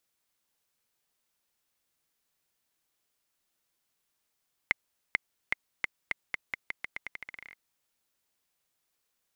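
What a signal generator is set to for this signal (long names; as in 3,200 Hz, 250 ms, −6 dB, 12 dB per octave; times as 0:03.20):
bouncing ball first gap 0.44 s, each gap 0.85, 2,100 Hz, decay 16 ms −9 dBFS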